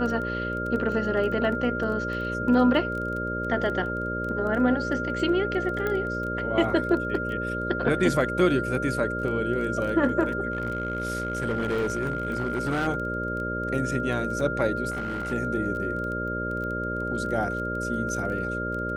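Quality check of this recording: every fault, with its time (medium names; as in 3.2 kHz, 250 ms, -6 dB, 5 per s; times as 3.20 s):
buzz 60 Hz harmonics 10 -32 dBFS
crackle 14 per s -32 dBFS
whine 1.4 kHz -30 dBFS
5.87 s: pop -16 dBFS
10.52–12.88 s: clipped -22 dBFS
14.90–15.33 s: clipped -26.5 dBFS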